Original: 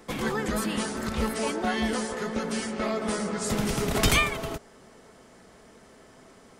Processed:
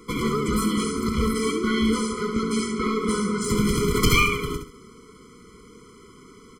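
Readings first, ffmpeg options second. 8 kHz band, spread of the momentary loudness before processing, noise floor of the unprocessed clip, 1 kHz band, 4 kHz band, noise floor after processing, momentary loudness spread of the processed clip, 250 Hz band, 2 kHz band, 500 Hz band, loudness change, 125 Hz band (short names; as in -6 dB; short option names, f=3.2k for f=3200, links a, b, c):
+2.0 dB, 8 LU, -54 dBFS, +3.0 dB, +3.0 dB, -49 dBFS, 6 LU, +6.5 dB, +2.5 dB, +3.5 dB, +4.5 dB, +5.5 dB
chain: -af "aeval=exprs='clip(val(0),-1,0.0668)':c=same,aecho=1:1:68|136|204|272:0.447|0.134|0.0402|0.0121,afftfilt=real='re*eq(mod(floor(b*sr/1024/490),2),0)':imag='im*eq(mod(floor(b*sr/1024/490),2),0)':win_size=1024:overlap=0.75,volume=5.5dB"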